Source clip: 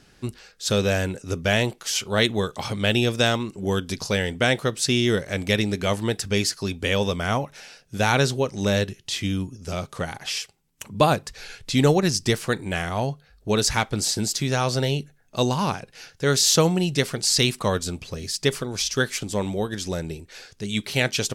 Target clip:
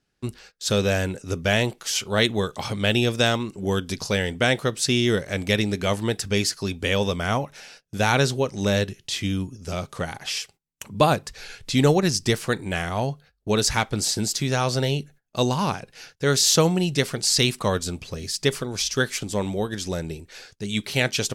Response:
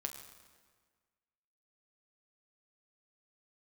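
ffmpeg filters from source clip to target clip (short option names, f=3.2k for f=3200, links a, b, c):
-af "agate=range=-20dB:threshold=-47dB:ratio=16:detection=peak"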